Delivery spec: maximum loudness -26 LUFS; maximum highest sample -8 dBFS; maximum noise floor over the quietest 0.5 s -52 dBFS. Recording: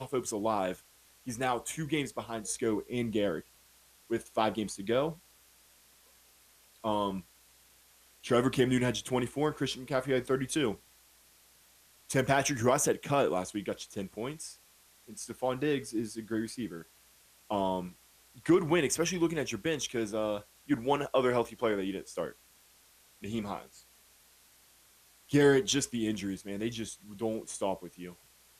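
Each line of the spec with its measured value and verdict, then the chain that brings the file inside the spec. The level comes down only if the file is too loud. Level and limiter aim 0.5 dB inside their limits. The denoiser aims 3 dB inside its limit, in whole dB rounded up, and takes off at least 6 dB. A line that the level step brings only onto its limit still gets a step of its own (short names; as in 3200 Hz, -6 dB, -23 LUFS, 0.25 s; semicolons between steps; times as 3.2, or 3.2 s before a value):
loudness -32.0 LUFS: OK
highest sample -14.0 dBFS: OK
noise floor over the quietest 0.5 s -62 dBFS: OK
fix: none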